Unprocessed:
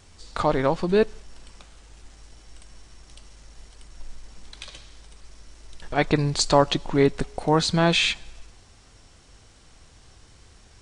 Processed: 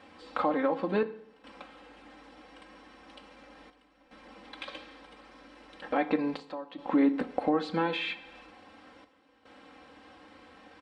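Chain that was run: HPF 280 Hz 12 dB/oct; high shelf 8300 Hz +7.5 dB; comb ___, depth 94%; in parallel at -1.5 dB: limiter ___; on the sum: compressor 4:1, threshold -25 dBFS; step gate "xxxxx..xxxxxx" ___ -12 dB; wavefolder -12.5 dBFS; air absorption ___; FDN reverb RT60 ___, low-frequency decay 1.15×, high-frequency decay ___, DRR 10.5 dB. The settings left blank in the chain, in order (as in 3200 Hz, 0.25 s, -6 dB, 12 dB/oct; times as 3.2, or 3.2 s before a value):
3.8 ms, -12.5 dBFS, 73 bpm, 480 m, 0.65 s, 0.85×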